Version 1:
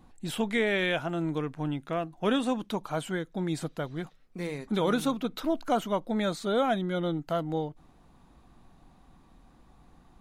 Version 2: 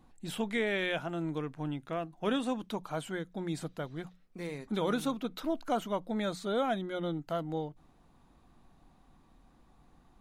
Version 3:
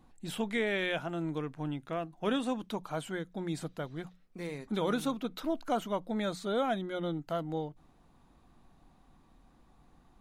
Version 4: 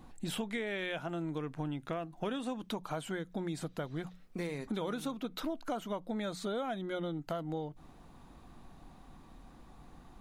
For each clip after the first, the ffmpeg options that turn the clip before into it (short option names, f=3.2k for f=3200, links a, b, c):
-af "bandreject=f=60:t=h:w=6,bandreject=f=120:t=h:w=6,bandreject=f=180:t=h:w=6,volume=-4.5dB"
-af anull
-af "acompressor=threshold=-42dB:ratio=6,volume=7.5dB"